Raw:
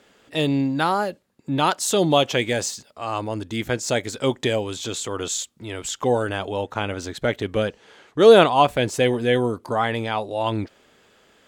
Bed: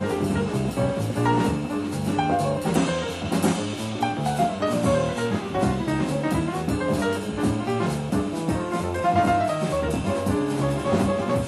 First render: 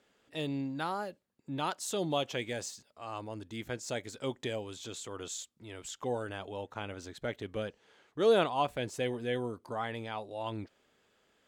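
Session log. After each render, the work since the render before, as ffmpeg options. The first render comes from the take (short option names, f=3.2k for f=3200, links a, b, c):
-af "volume=-14dB"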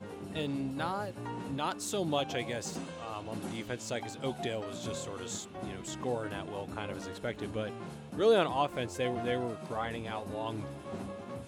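-filter_complex "[1:a]volume=-19dB[a];[0:a][a]amix=inputs=2:normalize=0"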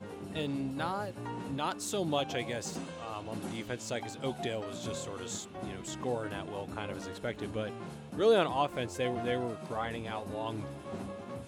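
-af anull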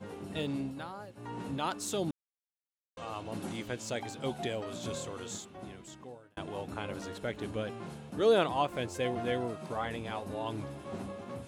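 -filter_complex "[0:a]asplit=6[a][b][c][d][e][f];[a]atrim=end=0.85,asetpts=PTS-STARTPTS,afade=t=out:st=0.59:d=0.26:silence=0.354813[g];[b]atrim=start=0.85:end=1.14,asetpts=PTS-STARTPTS,volume=-9dB[h];[c]atrim=start=1.14:end=2.11,asetpts=PTS-STARTPTS,afade=t=in:d=0.26:silence=0.354813,afade=t=out:st=0.966:d=0.004:c=hsin[i];[d]atrim=start=2.11:end=2.97,asetpts=PTS-STARTPTS,volume=0[j];[e]atrim=start=2.97:end=6.37,asetpts=PTS-STARTPTS,afade=t=in:d=0.004:c=hsin,afade=t=out:st=2.06:d=1.34[k];[f]atrim=start=6.37,asetpts=PTS-STARTPTS,afade=t=in:d=0.004:c=hsin[l];[g][h][i][j][k][l]concat=n=6:v=0:a=1"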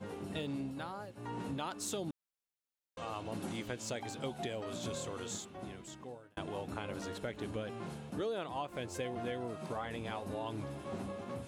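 -af "acompressor=threshold=-35dB:ratio=8"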